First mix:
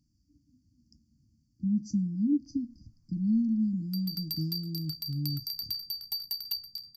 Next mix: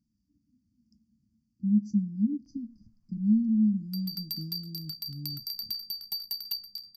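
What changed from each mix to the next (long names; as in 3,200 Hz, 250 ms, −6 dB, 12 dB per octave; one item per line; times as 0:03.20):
speech −9.5 dB
master: add parametric band 210 Hz +15 dB 0.38 octaves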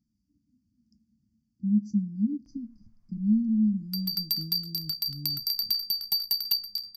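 background +7.5 dB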